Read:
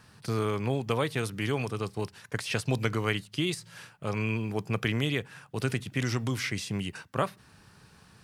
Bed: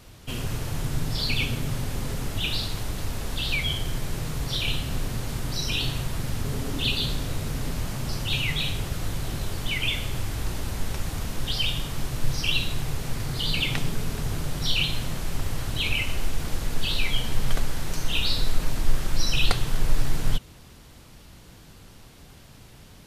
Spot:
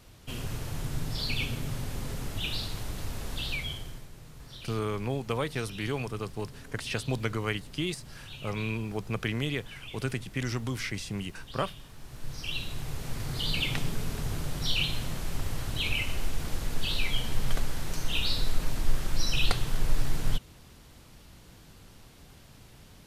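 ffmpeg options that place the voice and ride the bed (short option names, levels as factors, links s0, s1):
-filter_complex "[0:a]adelay=4400,volume=0.75[s0];[1:a]volume=2.82,afade=t=out:st=3.39:d=0.7:silence=0.223872,afade=t=in:st=11.98:d=1.4:silence=0.188365[s1];[s0][s1]amix=inputs=2:normalize=0"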